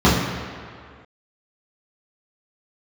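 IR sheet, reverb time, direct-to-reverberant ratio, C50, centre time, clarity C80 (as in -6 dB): 2.1 s, -10.0 dB, 1.5 dB, 87 ms, 3.5 dB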